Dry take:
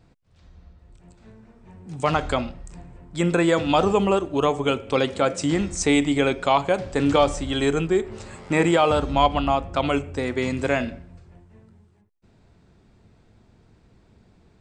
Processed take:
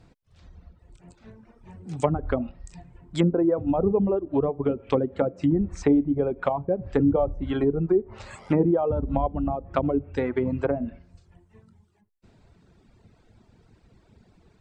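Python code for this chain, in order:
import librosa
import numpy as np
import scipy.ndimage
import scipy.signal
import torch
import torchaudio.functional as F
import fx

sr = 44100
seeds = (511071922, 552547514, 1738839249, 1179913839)

y = fx.env_lowpass_down(x, sr, base_hz=450.0, full_db=-18.0)
y = fx.dereverb_blind(y, sr, rt60_s=1.4)
y = y * 10.0 ** (2.0 / 20.0)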